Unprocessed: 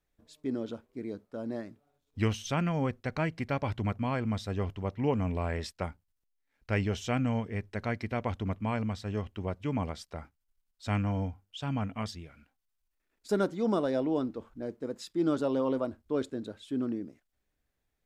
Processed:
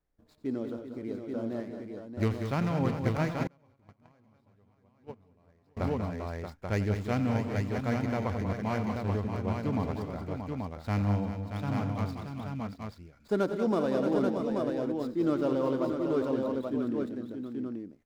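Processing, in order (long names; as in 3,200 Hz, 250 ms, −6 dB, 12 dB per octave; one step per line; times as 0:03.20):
running median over 15 samples
multi-tap delay 89/188/217/390/629/833 ms −13.5/−8.5/−16/−12/−7.5/−4.5 dB
0:03.47–0:05.77: noise gate −22 dBFS, range −34 dB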